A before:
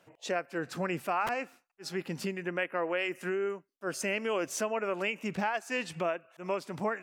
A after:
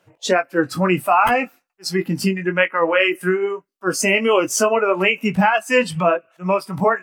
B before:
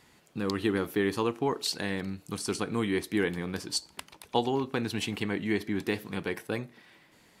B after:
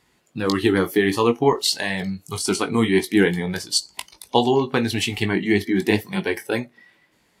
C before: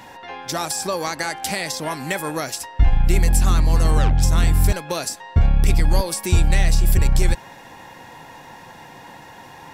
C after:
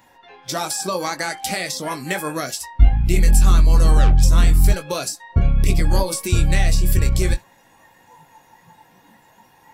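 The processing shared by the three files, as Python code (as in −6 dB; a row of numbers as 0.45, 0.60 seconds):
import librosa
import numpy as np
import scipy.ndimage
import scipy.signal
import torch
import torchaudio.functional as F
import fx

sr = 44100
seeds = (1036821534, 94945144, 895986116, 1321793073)

y = fx.chorus_voices(x, sr, voices=6, hz=1.4, base_ms=19, depth_ms=3.0, mix_pct=30)
y = fx.noise_reduce_blind(y, sr, reduce_db=13)
y = librosa.util.normalize(y) * 10.0 ** (-1.5 / 20.0)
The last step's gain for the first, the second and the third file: +18.0, +13.0, +3.0 decibels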